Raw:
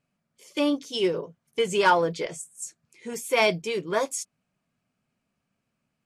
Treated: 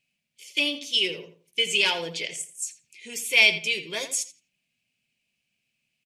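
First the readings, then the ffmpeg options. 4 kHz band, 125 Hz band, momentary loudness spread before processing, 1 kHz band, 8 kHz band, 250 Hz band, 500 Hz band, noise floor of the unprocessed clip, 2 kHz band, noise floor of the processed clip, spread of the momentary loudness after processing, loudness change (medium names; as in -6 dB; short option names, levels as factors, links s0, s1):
+9.5 dB, -8.5 dB, 16 LU, -12.5 dB, +4.5 dB, -9.5 dB, -9.5 dB, -80 dBFS, +6.0 dB, -79 dBFS, 16 LU, +2.0 dB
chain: -filter_complex "[0:a]highshelf=f=1800:t=q:w=3:g=12.5,bandreject=f=89.7:t=h:w=4,bandreject=f=179.4:t=h:w=4,bandreject=f=269.1:t=h:w=4,bandreject=f=358.8:t=h:w=4,asplit=2[s0][s1];[s1]adelay=84,lowpass=f=3500:p=1,volume=0.282,asplit=2[s2][s3];[s3]adelay=84,lowpass=f=3500:p=1,volume=0.28,asplit=2[s4][s5];[s5]adelay=84,lowpass=f=3500:p=1,volume=0.28[s6];[s2][s4][s6]amix=inputs=3:normalize=0[s7];[s0][s7]amix=inputs=2:normalize=0,volume=0.376"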